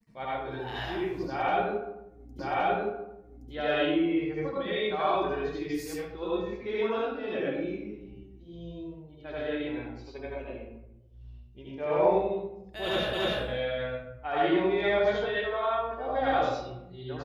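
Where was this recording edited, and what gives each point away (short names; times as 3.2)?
2.39 repeat of the last 1.12 s
13.13 repeat of the last 0.29 s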